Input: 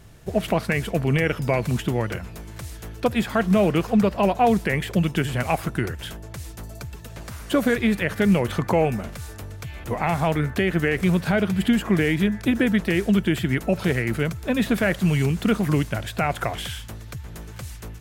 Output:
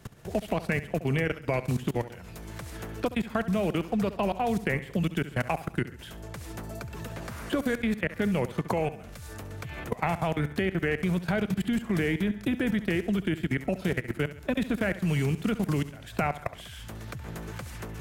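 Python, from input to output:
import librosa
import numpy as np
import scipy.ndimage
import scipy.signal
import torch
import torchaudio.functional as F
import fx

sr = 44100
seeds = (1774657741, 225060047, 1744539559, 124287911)

p1 = fx.level_steps(x, sr, step_db=23)
p2 = p1 + fx.echo_feedback(p1, sr, ms=68, feedback_pct=39, wet_db=-15, dry=0)
p3 = fx.band_squash(p2, sr, depth_pct=70)
y = p3 * 10.0 ** (-3.0 / 20.0)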